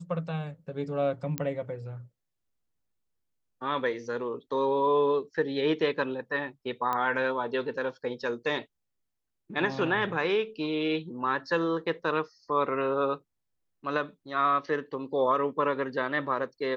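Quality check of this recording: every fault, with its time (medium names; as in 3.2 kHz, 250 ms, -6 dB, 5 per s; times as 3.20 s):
1.38 s: pop -14 dBFS
6.93 s: pop -17 dBFS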